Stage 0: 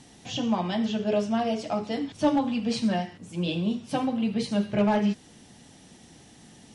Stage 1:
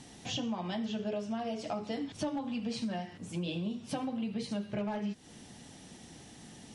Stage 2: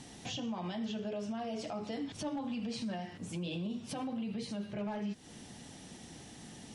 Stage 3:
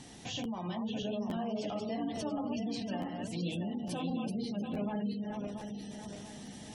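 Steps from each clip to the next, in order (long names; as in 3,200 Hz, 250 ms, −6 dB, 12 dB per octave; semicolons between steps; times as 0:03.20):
downward compressor, threshold −33 dBFS, peak gain reduction 14 dB
brickwall limiter −32 dBFS, peak gain reduction 9.5 dB; level +1 dB
feedback delay that plays each chunk backwards 342 ms, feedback 65%, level −3.5 dB; gate on every frequency bin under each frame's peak −30 dB strong; regular buffer underruns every 0.86 s, samples 512, repeat, from 0:00.43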